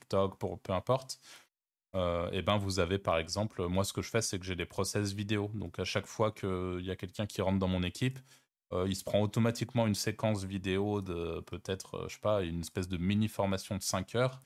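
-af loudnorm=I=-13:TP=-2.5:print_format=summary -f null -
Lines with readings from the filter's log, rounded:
Input Integrated:    -34.1 LUFS
Input True Peak:     -13.5 dBTP
Input LRA:             1.8 LU
Input Threshold:     -44.3 LUFS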